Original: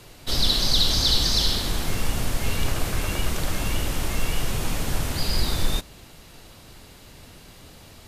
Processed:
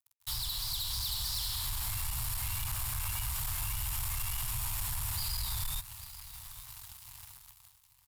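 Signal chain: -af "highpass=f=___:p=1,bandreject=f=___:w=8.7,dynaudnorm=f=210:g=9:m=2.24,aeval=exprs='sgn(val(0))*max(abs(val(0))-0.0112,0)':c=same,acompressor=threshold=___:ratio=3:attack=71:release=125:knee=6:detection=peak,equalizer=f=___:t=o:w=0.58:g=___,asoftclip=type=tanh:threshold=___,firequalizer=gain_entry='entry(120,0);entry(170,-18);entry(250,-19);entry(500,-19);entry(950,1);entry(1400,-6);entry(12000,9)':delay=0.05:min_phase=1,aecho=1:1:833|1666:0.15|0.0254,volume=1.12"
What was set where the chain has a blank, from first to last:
42, 6200, 0.0158, 430, -14, 0.0251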